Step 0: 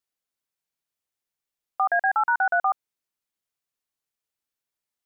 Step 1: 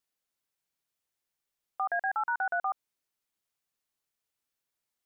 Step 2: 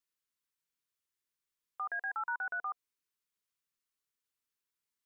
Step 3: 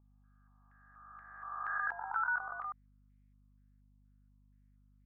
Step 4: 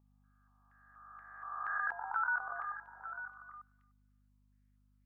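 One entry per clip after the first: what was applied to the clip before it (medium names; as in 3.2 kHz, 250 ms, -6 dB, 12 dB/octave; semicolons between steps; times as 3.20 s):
peak limiter -24 dBFS, peak gain reduction 9.5 dB; trim +1 dB
FFT filter 460 Hz 0 dB, 720 Hz -12 dB, 1 kHz +2 dB; trim -6 dB
reverse spectral sustain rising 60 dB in 1.98 s; hum 50 Hz, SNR 16 dB; step-sequenced low-pass 4.2 Hz 890–2100 Hz; trim -8 dB
bass shelf 98 Hz -5.5 dB; repeats whose band climbs or falls 298 ms, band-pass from 200 Hz, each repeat 1.4 oct, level -4.5 dB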